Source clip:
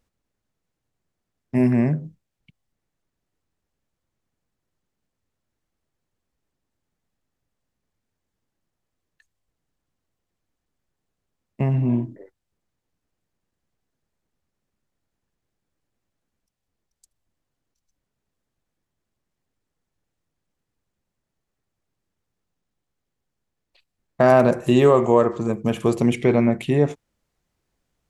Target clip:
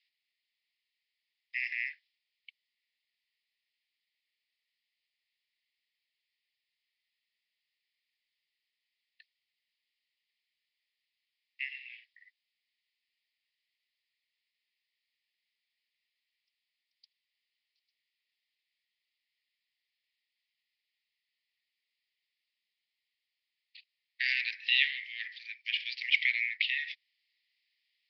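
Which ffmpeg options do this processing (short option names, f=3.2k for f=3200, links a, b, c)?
-af "asuperpass=centerf=3100:order=20:qfactor=0.96,volume=7dB"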